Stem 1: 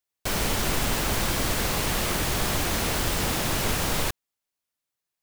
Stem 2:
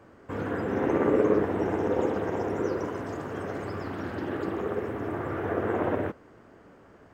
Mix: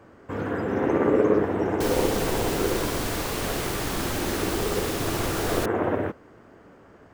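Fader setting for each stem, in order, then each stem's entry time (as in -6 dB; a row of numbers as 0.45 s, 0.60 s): -4.5 dB, +2.5 dB; 1.55 s, 0.00 s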